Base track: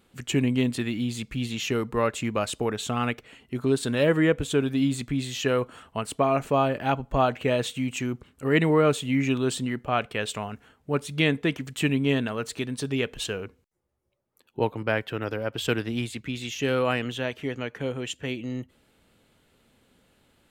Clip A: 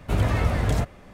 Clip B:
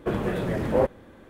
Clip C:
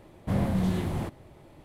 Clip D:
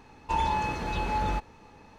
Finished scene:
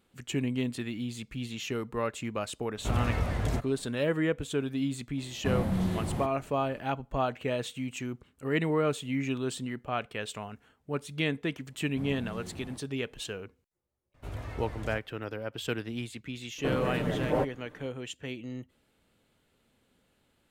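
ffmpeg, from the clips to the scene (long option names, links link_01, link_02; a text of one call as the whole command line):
ffmpeg -i bed.wav -i cue0.wav -i cue1.wav -i cue2.wav -filter_complex "[1:a]asplit=2[link_01][link_02];[3:a]asplit=2[link_03][link_04];[0:a]volume=-7dB[link_05];[link_02]equalizer=frequency=190:width_type=o:width=0.24:gain=-13.5[link_06];[2:a]aecho=1:1:6.7:0.59[link_07];[link_01]atrim=end=1.13,asetpts=PTS-STARTPTS,volume=-7dB,afade=type=in:duration=0.004:curve=hsin,afade=type=out:start_time=1.126:duration=0.004:curve=hsin,adelay=2760[link_08];[link_03]atrim=end=1.64,asetpts=PTS-STARTPTS,volume=-2.5dB,afade=type=in:duration=0.004:curve=hsin,afade=type=out:start_time=1.636:duration=0.004:curve=hsin,adelay=227997S[link_09];[link_04]atrim=end=1.64,asetpts=PTS-STARTPTS,volume=-15dB,afade=type=in:duration=0.004:curve=hsin,afade=type=out:start_time=1.636:duration=0.004:curve=hsin,adelay=11690[link_10];[link_06]atrim=end=1.13,asetpts=PTS-STARTPTS,volume=-16.5dB,afade=type=in:duration=0.004:curve=hsin,afade=type=out:start_time=1.126:duration=0.004:curve=hsin,adelay=14140[link_11];[link_07]atrim=end=1.29,asetpts=PTS-STARTPTS,volume=-5dB,afade=type=in:duration=0.004:curve=hsin,afade=type=out:start_time=1.286:duration=0.004:curve=hsin,adelay=16580[link_12];[link_05][link_08][link_09][link_10][link_11][link_12]amix=inputs=6:normalize=0" out.wav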